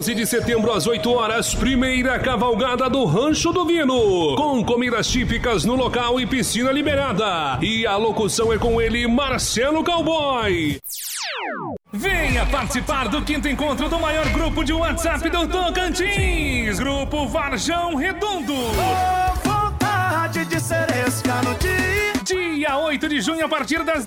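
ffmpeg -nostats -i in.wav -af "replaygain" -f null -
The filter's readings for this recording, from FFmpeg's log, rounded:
track_gain = +2.3 dB
track_peak = 0.208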